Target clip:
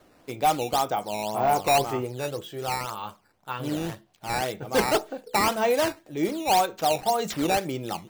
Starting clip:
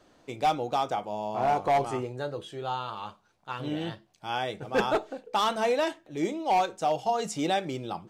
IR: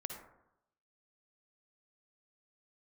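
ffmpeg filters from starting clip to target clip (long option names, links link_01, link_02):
-af "acrusher=samples=8:mix=1:aa=0.000001:lfo=1:lforange=12.8:lforate=1.9,volume=3dB"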